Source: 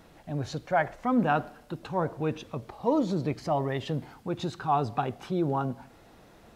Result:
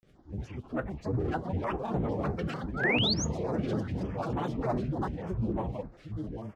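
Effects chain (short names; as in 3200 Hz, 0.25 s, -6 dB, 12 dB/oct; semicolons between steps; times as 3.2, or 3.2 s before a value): pitch shift by moving bins -10.5 st; high shelf 4400 Hz -9 dB; on a send: echo 0.78 s -5.5 dB; on the sum: echoes that change speed 0.616 s, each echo +4 st, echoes 3; thin delay 0.959 s, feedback 55%, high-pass 1500 Hz, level -11.5 dB; in parallel at -10 dB: wavefolder -23.5 dBFS; on the sum: grains, spray 29 ms, pitch spread up and down by 12 st; painted sound rise, 2.74–3.25, 1200–6900 Hz -22 dBFS; flange 0.37 Hz, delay 5.1 ms, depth 1.5 ms, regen -77%; stepped notch 6.7 Hz 940–5000 Hz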